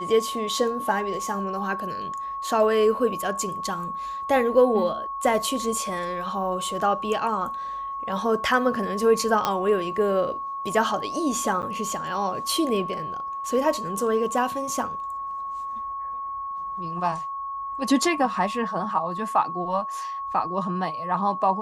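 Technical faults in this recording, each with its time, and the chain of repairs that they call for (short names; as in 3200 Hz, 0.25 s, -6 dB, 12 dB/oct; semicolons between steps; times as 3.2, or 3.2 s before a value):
tone 1100 Hz -29 dBFS
9.45 pop -9 dBFS
11.62–11.63 gap 9.4 ms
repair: de-click; notch 1100 Hz, Q 30; interpolate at 11.62, 9.4 ms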